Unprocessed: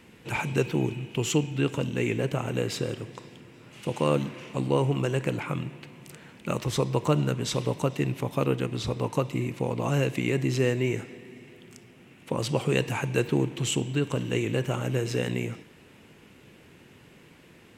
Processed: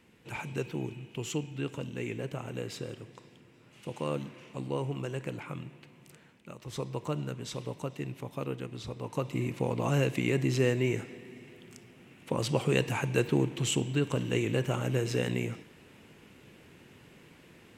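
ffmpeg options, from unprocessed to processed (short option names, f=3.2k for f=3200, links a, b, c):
-af "volume=8.5dB,afade=t=out:st=6.16:d=0.41:silence=0.298538,afade=t=in:st=6.57:d=0.21:silence=0.334965,afade=t=in:st=9.03:d=0.44:silence=0.398107"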